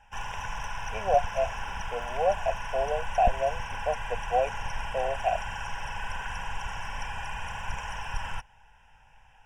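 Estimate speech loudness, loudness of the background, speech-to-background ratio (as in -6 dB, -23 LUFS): -30.0 LUFS, -36.0 LUFS, 6.0 dB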